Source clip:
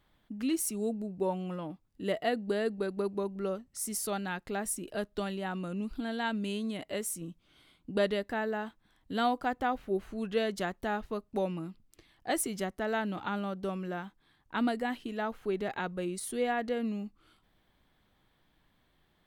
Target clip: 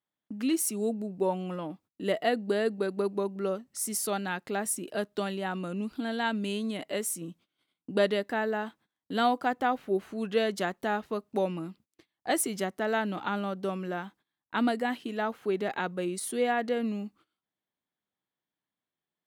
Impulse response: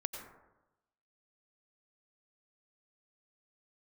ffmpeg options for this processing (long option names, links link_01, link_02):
-af "highpass=170,agate=range=-24dB:threshold=-59dB:ratio=16:detection=peak,volume=3.5dB"